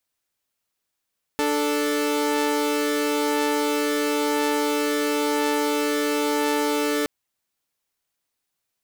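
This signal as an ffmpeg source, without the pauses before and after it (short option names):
-f lavfi -i "aevalsrc='0.0891*((2*mod(293.66*t,1)-1)+(2*mod(440*t,1)-1))':d=5.67:s=44100"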